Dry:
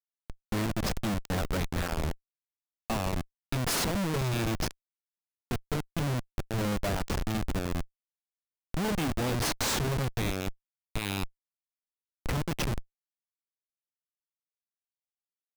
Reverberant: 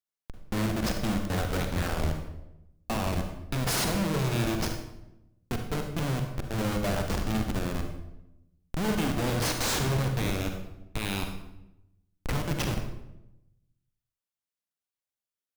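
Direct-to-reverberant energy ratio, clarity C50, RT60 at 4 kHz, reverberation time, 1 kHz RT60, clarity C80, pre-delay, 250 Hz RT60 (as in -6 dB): 4.0 dB, 5.5 dB, 0.65 s, 0.90 s, 0.80 s, 8.0 dB, 39 ms, 1.1 s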